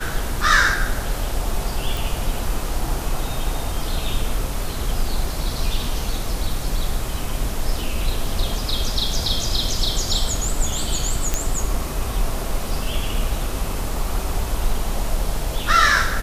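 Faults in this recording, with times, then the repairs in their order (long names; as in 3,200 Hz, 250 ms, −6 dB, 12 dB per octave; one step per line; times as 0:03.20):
0:01.97: click
0:11.34: click −5 dBFS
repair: click removal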